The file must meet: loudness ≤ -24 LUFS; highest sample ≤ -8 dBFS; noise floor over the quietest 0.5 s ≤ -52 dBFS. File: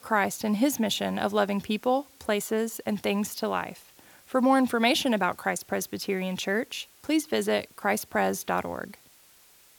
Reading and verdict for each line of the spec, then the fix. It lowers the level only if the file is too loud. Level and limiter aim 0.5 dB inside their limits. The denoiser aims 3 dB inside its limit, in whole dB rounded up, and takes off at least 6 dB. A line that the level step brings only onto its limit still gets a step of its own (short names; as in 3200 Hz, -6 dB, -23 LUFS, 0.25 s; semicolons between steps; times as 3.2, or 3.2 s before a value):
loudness -27.5 LUFS: OK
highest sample -9.5 dBFS: OK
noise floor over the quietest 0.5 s -57 dBFS: OK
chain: none